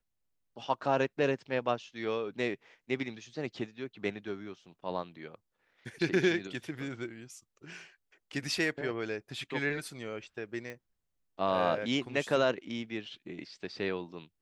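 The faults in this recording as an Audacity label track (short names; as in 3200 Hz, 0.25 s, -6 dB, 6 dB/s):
10.700000	10.700000	pop -28 dBFS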